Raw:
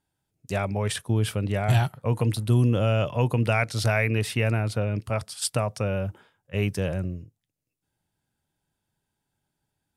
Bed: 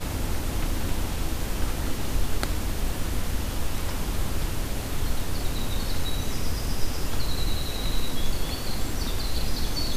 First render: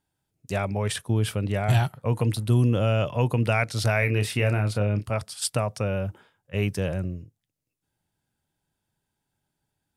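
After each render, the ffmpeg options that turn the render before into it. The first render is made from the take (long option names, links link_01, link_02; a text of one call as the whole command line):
ffmpeg -i in.wav -filter_complex "[0:a]asettb=1/sr,asplit=3[link_01][link_02][link_03];[link_01]atrim=end=3.994[link_04];[link_02]atrim=start=3.99:end=5.05,asetpts=PTS-STARTPTS,afade=type=in:duration=0.004:curve=qsin,afade=type=out:start_time=1.056:duration=0.004:curve=qsin,asplit=2[link_05][link_06];[link_06]adelay=29,volume=-8dB[link_07];[link_05][link_07]amix=inputs=2:normalize=0,atrim=end_sample=46746[link_08];[link_03]atrim=start=5.046[link_09];[link_04][link_08]acrossfade=duration=0.004:curve1=hsin:curve2=qsin[link_10];[link_10][link_09]acrossfade=duration=0.004:curve1=qsin:curve2=hsin" out.wav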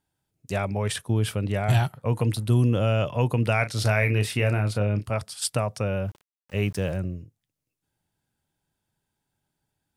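ffmpeg -i in.wav -filter_complex "[0:a]asettb=1/sr,asplit=3[link_01][link_02][link_03];[link_01]atrim=end=3.574[link_04];[link_02]atrim=start=3.57:end=4.22,asetpts=PTS-STARTPTS,afade=type=in:duration=0.004:curve=qsin,afade=type=out:start_time=0.646:duration=0.004:curve=qsin,asplit=2[link_05][link_06];[link_06]adelay=37,volume=-12dB[link_07];[link_05][link_07]amix=inputs=2:normalize=0,atrim=end_sample=28665[link_08];[link_03]atrim=start=4.216[link_09];[link_04][link_08]acrossfade=duration=0.004:curve1=hsin:curve2=qsin[link_10];[link_10][link_09]acrossfade=duration=0.004:curve1=qsin:curve2=hsin,asplit=3[link_11][link_12][link_13];[link_11]afade=type=out:start_time=6.07:duration=0.02[link_14];[link_12]aeval=exprs='val(0)*gte(abs(val(0)),0.00473)':channel_layout=same,afade=type=in:start_time=6.07:duration=0.02,afade=type=out:start_time=6.96:duration=0.02[link_15];[link_13]afade=type=in:start_time=6.96:duration=0.02[link_16];[link_14][link_15][link_16]amix=inputs=3:normalize=0" out.wav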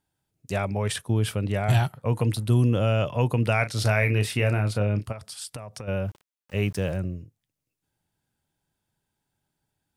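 ffmpeg -i in.wav -filter_complex "[0:a]asplit=3[link_01][link_02][link_03];[link_01]afade=type=out:start_time=5.11:duration=0.02[link_04];[link_02]acompressor=threshold=-33dB:ratio=10:attack=3.2:release=140:knee=1:detection=peak,afade=type=in:start_time=5.11:duration=0.02,afade=type=out:start_time=5.87:duration=0.02[link_05];[link_03]afade=type=in:start_time=5.87:duration=0.02[link_06];[link_04][link_05][link_06]amix=inputs=3:normalize=0" out.wav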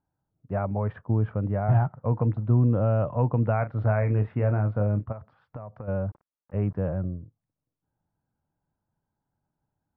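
ffmpeg -i in.wav -af "lowpass=frequency=1300:width=0.5412,lowpass=frequency=1300:width=1.3066,equalizer=frequency=390:width_type=o:width=0.37:gain=-5" out.wav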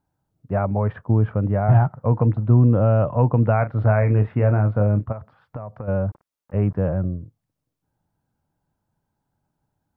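ffmpeg -i in.wav -af "volume=6dB" out.wav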